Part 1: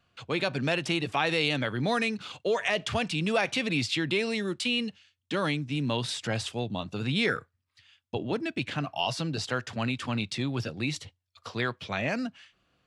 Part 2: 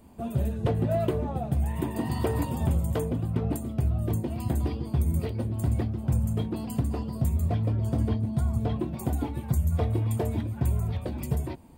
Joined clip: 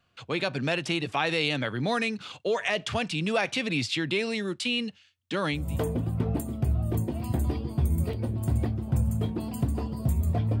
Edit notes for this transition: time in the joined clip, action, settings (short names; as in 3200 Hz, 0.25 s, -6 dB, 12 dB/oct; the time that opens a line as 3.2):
part 1
5.65 switch to part 2 from 2.81 s, crossfade 0.28 s